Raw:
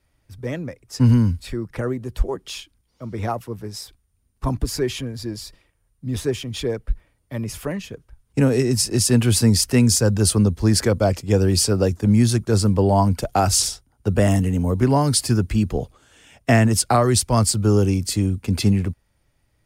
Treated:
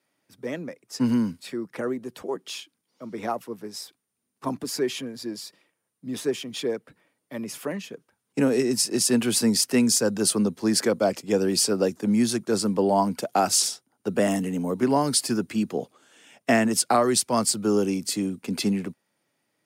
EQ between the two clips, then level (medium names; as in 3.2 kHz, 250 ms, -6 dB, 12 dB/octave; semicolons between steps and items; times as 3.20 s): high-pass 190 Hz 24 dB/octave; -2.5 dB